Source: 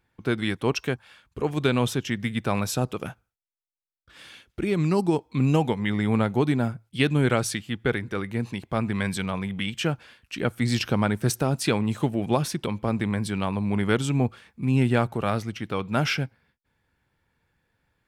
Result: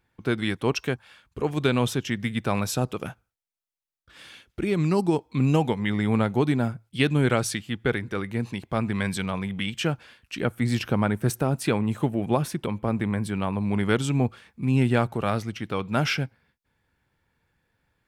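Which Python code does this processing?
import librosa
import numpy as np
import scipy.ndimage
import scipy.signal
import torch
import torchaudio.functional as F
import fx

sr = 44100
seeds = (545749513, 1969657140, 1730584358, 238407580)

y = fx.peak_eq(x, sr, hz=5000.0, db=-7.0, octaves=1.5, at=(10.45, 13.61))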